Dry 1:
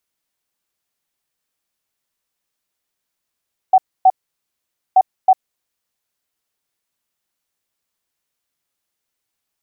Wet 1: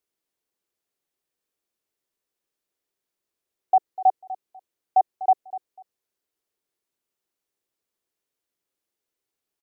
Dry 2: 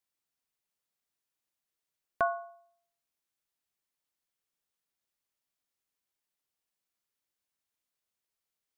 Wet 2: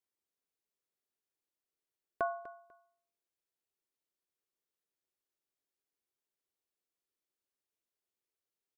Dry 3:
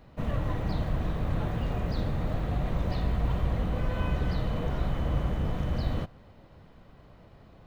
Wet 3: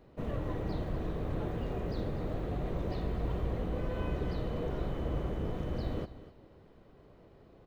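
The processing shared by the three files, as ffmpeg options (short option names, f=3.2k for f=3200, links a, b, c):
-af "equalizer=f=390:t=o:w=0.98:g=10.5,aecho=1:1:247|494:0.168|0.0353,volume=-7.5dB"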